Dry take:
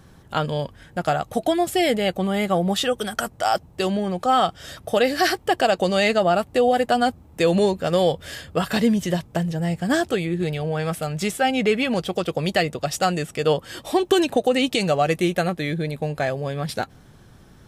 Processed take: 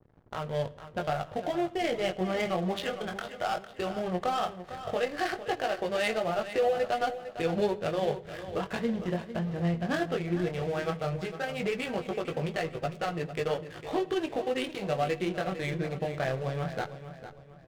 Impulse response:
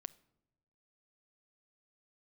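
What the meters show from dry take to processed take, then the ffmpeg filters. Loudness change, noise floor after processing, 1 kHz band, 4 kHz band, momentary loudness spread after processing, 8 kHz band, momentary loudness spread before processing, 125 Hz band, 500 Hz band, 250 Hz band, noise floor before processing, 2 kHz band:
−9.5 dB, −50 dBFS, −10.0 dB, −12.0 dB, 6 LU, −15.0 dB, 7 LU, −8.0 dB, −8.5 dB, −10.5 dB, −50 dBFS, −9.0 dB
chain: -filter_complex "[0:a]equalizer=frequency=240:width_type=o:width=0.37:gain=-8,asplit=2[link_01][link_02];[link_02]acompressor=threshold=-33dB:ratio=6,volume=2dB[link_03];[link_01][link_03]amix=inputs=2:normalize=0,alimiter=limit=-13dB:level=0:latency=1:release=265,flanger=delay=18:depth=5.1:speed=0.15,adynamicsmooth=sensitivity=2:basefreq=840,aeval=exprs='sgn(val(0))*max(abs(val(0))-0.00596,0)':channel_layout=same,aecho=1:1:454|908|1362|1816:0.251|0.0929|0.0344|0.0127[link_04];[1:a]atrim=start_sample=2205,asetrate=35280,aresample=44100[link_05];[link_04][link_05]afir=irnorm=-1:irlink=0,adynamicequalizer=threshold=0.00501:dfrequency=1700:dqfactor=0.7:tfrequency=1700:tqfactor=0.7:attack=5:release=100:ratio=0.375:range=2:mode=boostabove:tftype=highshelf"

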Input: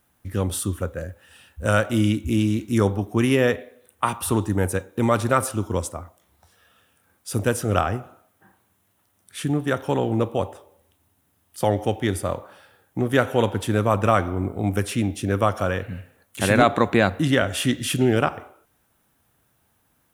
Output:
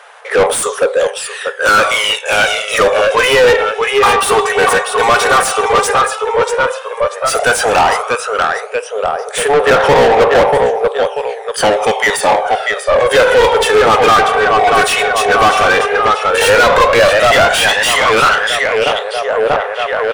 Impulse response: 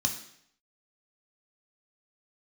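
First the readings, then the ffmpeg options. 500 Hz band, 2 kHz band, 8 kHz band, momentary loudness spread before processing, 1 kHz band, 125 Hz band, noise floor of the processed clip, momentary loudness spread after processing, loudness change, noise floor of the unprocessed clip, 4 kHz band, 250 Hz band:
+14.0 dB, +17.5 dB, +13.5 dB, 11 LU, +16.5 dB, −4.5 dB, −26 dBFS, 8 LU, +11.5 dB, −67 dBFS, +18.0 dB, −2.5 dB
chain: -filter_complex "[0:a]asplit=2[link_01][link_02];[link_02]adelay=638,lowpass=frequency=4800:poles=1,volume=-9dB,asplit=2[link_03][link_04];[link_04]adelay=638,lowpass=frequency=4800:poles=1,volume=0.52,asplit=2[link_05][link_06];[link_06]adelay=638,lowpass=frequency=4800:poles=1,volume=0.52,asplit=2[link_07][link_08];[link_08]adelay=638,lowpass=frequency=4800:poles=1,volume=0.52,asplit=2[link_09][link_10];[link_10]adelay=638,lowpass=frequency=4800:poles=1,volume=0.52,asplit=2[link_11][link_12];[link_12]adelay=638,lowpass=frequency=4800:poles=1,volume=0.52[link_13];[link_01][link_03][link_05][link_07][link_09][link_11][link_13]amix=inputs=7:normalize=0,aphaser=in_gain=1:out_gain=1:delay=2.7:decay=0.64:speed=0.1:type=sinusoidal,afftfilt=real='re*between(b*sr/4096,400,11000)':imag='im*between(b*sr/4096,400,11000)':win_size=4096:overlap=0.75,asplit=2[link_14][link_15];[link_15]highpass=frequency=720:poles=1,volume=33dB,asoftclip=type=tanh:threshold=-1dB[link_16];[link_14][link_16]amix=inputs=2:normalize=0,lowpass=frequency=3000:poles=1,volume=-6dB"

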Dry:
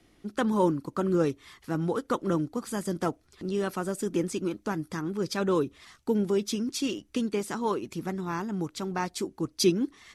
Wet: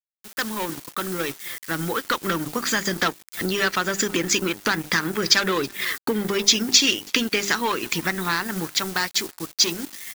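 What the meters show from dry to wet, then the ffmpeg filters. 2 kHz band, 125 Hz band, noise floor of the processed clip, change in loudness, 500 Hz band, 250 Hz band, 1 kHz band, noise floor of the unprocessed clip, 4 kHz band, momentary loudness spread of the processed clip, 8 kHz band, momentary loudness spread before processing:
+16.5 dB, 0.0 dB, −64 dBFS, +7.5 dB, +0.5 dB, +0.5 dB, +6.0 dB, −64 dBFS, +17.0 dB, 11 LU, +15.5 dB, 8 LU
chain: -filter_complex "[0:a]equalizer=frequency=1800:width=1.2:gain=14,aresample=16000,asoftclip=type=tanh:threshold=-20.5dB,aresample=44100,adynamicequalizer=threshold=0.00447:dfrequency=3600:dqfactor=1.2:tfrequency=3600:tqfactor=1.2:attack=5:release=100:ratio=0.375:range=2.5:mode=boostabove:tftype=bell,bandreject=frequency=50:width_type=h:width=6,bandreject=frequency=100:width_type=h:width=6,bandreject=frequency=150:width_type=h:width=6,bandreject=frequency=200:width_type=h:width=6,bandreject=frequency=250:width_type=h:width=6,bandreject=frequency=300:width_type=h:width=6,bandreject=frequency=350:width_type=h:width=6,bandreject=frequency=400:width_type=h:width=6,afftdn=noise_reduction=13:noise_floor=-49,dynaudnorm=framelen=430:gausssize=11:maxgain=15.5dB,acrusher=bits=6:mix=0:aa=0.000001,acompressor=threshold=-21dB:ratio=4,asplit=2[link_01][link_02];[link_02]aecho=0:1:326|652|978:0.0944|0.0387|0.0159[link_03];[link_01][link_03]amix=inputs=2:normalize=0,crystalizer=i=3.5:c=0,aeval=exprs='sgn(val(0))*max(abs(val(0))-0.0224,0)':channel_layout=same"

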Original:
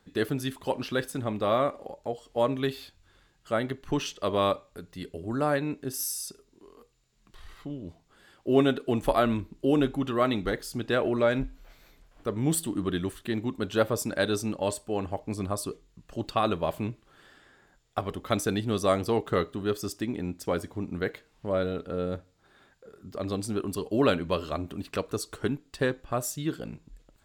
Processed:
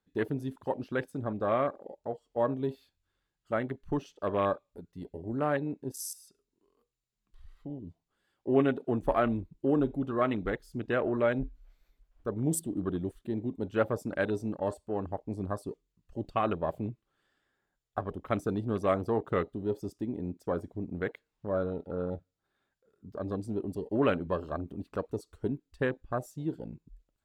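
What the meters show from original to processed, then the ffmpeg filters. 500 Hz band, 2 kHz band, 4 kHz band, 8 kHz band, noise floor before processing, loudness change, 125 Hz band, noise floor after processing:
−3.0 dB, −4.0 dB, −14.5 dB, −8.5 dB, −65 dBFS, −3.5 dB, −3.0 dB, −84 dBFS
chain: -af "afwtdn=0.0178,volume=-3dB"

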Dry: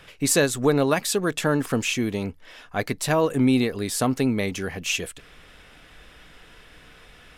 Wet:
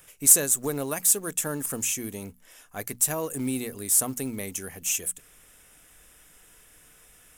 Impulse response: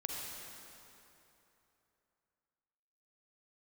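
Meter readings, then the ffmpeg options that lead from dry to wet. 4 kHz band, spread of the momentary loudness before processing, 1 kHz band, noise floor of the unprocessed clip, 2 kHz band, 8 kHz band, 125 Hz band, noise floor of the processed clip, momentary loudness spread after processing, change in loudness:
−8.5 dB, 9 LU, −10.0 dB, −50 dBFS, −10.0 dB, +7.5 dB, −10.5 dB, −56 dBFS, 20 LU, −0.5 dB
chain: -af "aexciter=amount=7.6:drive=7.5:freq=6300,bandreject=frequency=60:width_type=h:width=6,bandreject=frequency=120:width_type=h:width=6,bandreject=frequency=180:width_type=h:width=6,bandreject=frequency=240:width_type=h:width=6,acrusher=bits=6:mode=log:mix=0:aa=0.000001,volume=-10dB"

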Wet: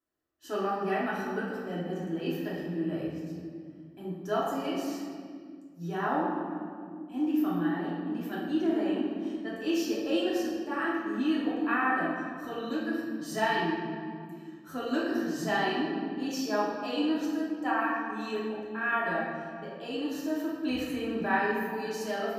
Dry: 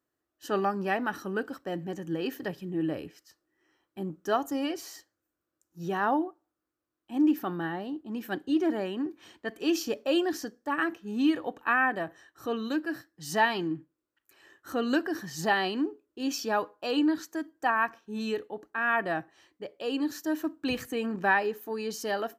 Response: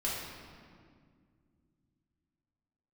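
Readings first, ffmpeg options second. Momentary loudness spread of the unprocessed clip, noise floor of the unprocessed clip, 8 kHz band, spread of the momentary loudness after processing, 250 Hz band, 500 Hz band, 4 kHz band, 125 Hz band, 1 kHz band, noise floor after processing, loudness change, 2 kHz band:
11 LU, −85 dBFS, −3.5 dB, 12 LU, 0.0 dB, −0.5 dB, −2.0 dB, +2.0 dB, −1.0 dB, −47 dBFS, −1.0 dB, −2.0 dB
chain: -filter_complex "[1:a]atrim=start_sample=2205[link_01];[0:a][link_01]afir=irnorm=-1:irlink=0,volume=-7dB"

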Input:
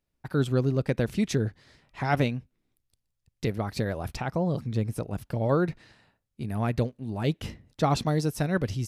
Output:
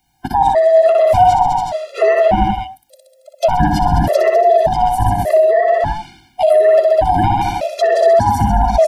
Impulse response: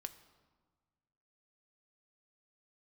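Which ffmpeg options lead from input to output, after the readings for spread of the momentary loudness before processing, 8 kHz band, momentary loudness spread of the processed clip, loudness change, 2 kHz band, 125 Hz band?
8 LU, can't be measured, 9 LU, +15.5 dB, +11.0 dB, +5.5 dB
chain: -filter_complex "[0:a]afftfilt=real='real(if(lt(b,1008),b+24*(1-2*mod(floor(b/24),2)),b),0)':imag='imag(if(lt(b,1008),b+24*(1-2*mod(floor(b/24),2)),b),0)':win_size=2048:overlap=0.75,asplit=2[link_01][link_02];[link_02]aecho=0:1:60|126|198.6|278.5|366.3:0.631|0.398|0.251|0.158|0.1[link_03];[link_01][link_03]amix=inputs=2:normalize=0,acrossover=split=440|3000[link_04][link_05][link_06];[link_04]acompressor=threshold=-31dB:ratio=6[link_07];[link_07][link_05][link_06]amix=inputs=3:normalize=0,equalizer=frequency=1100:width=2.8:gain=-13,acrossover=split=290|1400[link_08][link_09][link_10];[link_08]asplit=2[link_11][link_12];[link_12]adelay=19,volume=-3dB[link_13];[link_11][link_13]amix=inputs=2:normalize=0[link_14];[link_10]acompressor=threshold=-52dB:ratio=5[link_15];[link_14][link_09][link_15]amix=inputs=3:normalize=0,alimiter=level_in=25dB:limit=-1dB:release=50:level=0:latency=1,afftfilt=real='re*gt(sin(2*PI*0.85*pts/sr)*(1-2*mod(floor(b*sr/1024/350),2)),0)':imag='im*gt(sin(2*PI*0.85*pts/sr)*(1-2*mod(floor(b*sr/1024/350),2)),0)':win_size=1024:overlap=0.75"

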